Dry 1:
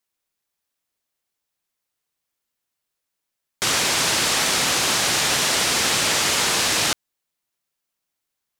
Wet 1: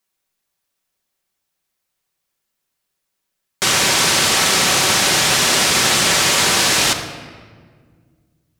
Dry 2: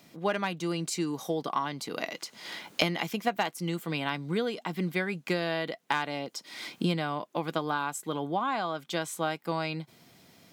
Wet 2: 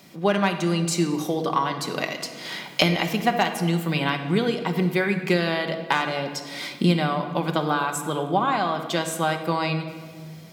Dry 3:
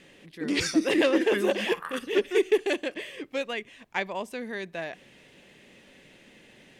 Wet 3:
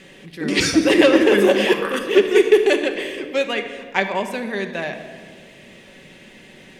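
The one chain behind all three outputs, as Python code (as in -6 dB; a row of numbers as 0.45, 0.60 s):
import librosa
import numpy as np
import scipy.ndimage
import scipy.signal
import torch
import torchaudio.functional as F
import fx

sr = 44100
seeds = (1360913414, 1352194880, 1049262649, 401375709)

y = fx.room_shoebox(x, sr, seeds[0], volume_m3=2200.0, walls='mixed', distance_m=1.1)
y = y * 10.0 ** (-2 / 20.0) / np.max(np.abs(y))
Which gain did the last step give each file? +4.0, +6.0, +8.0 dB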